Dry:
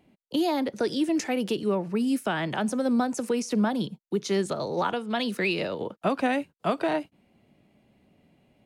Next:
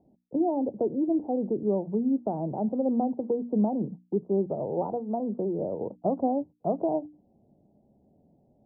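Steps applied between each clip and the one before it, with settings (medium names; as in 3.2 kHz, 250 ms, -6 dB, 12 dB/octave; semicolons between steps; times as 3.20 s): steep low-pass 830 Hz 48 dB/octave; hum notches 60/120/180/240/300 Hz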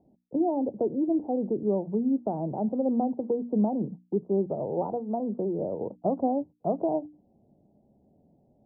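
no audible change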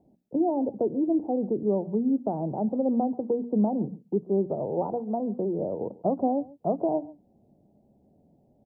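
delay 138 ms -21.5 dB; trim +1 dB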